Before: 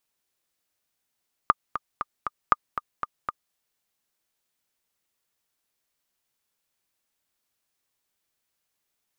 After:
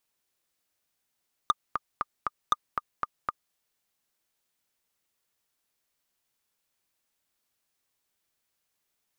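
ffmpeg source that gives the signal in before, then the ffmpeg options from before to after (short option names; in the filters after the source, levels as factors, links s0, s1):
-f lavfi -i "aevalsrc='pow(10,(-3.5-11*gte(mod(t,4*60/235),60/235))/20)*sin(2*PI*1210*mod(t,60/235))*exp(-6.91*mod(t,60/235)/0.03)':d=2.04:s=44100"
-af "asoftclip=type=hard:threshold=0.168"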